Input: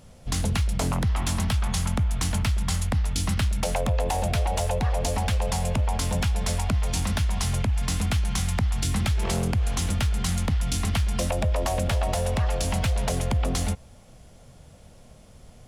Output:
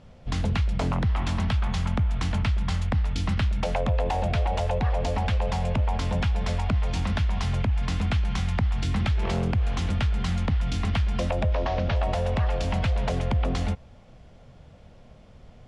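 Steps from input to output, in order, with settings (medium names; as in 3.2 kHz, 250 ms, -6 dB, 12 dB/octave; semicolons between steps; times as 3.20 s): 11.52–11.96 s: CVSD coder 32 kbps; low-pass 3.5 kHz 12 dB/octave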